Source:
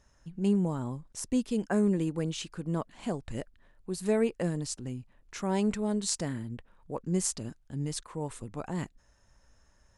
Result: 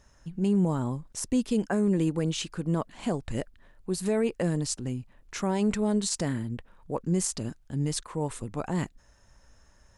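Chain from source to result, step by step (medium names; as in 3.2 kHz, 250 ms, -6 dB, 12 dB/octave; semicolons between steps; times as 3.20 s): peak limiter -22 dBFS, peak gain reduction 11 dB; trim +5 dB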